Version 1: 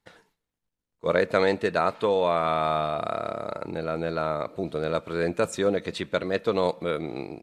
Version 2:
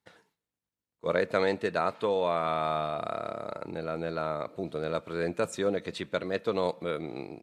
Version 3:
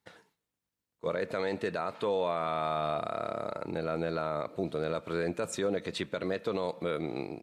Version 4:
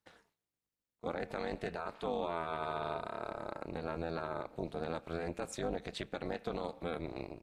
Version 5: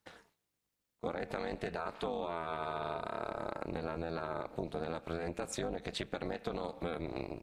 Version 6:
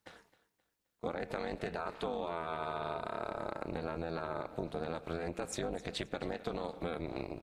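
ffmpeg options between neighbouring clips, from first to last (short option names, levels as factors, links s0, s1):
-af "highpass=74,volume=0.596"
-af "alimiter=limit=0.0668:level=0:latency=1:release=73,volume=1.33"
-af "tremolo=f=250:d=0.947,volume=0.75"
-af "acompressor=threshold=0.0112:ratio=6,volume=2"
-af "aecho=1:1:263|526|789:0.133|0.0467|0.0163"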